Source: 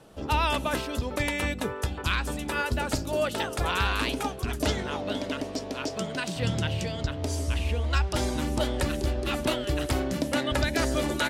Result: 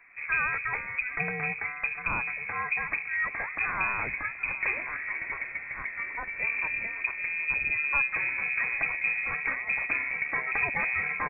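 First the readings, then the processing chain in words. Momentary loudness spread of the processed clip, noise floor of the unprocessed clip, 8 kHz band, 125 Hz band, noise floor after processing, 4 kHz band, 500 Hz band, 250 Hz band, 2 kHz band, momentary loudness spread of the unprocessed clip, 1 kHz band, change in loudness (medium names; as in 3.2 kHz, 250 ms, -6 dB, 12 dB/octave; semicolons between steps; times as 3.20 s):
6 LU, -37 dBFS, under -40 dB, -17.5 dB, -40 dBFS, under -40 dB, -15.5 dB, -18.0 dB, +6.5 dB, 5 LU, -4.0 dB, 0.0 dB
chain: feedback delay 779 ms, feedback 40%, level -18 dB; frequency inversion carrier 2.5 kHz; trim -3 dB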